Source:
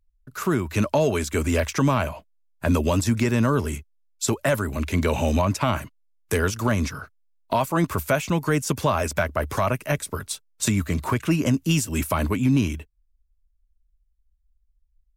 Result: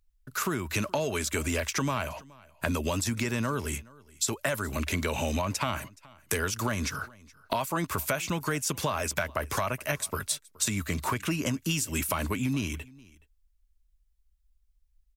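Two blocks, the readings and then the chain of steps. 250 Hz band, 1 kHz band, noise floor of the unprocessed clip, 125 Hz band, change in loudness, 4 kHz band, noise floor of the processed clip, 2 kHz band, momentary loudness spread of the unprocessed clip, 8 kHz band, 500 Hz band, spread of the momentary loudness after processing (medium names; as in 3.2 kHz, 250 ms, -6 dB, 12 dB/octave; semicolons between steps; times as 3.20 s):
-9.0 dB, -5.5 dB, -67 dBFS, -9.0 dB, -6.5 dB, -1.5 dB, -68 dBFS, -3.0 dB, 8 LU, -0.5 dB, -8.5 dB, 6 LU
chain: tilt shelf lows -4 dB, about 1.1 kHz; compression 4:1, threshold -29 dBFS, peak gain reduction 10.5 dB; delay 422 ms -23.5 dB; trim +2 dB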